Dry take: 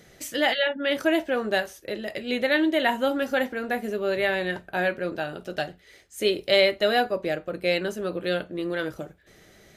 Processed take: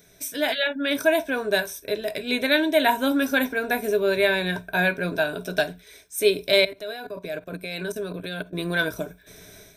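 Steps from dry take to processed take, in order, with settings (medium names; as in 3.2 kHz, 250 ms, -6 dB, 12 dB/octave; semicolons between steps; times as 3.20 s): 6.52–8.53 s: level held to a coarse grid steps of 18 dB; rippled EQ curve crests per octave 1.6, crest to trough 12 dB; level rider gain up to 10 dB; treble shelf 6.6 kHz +12 dB; trim -6 dB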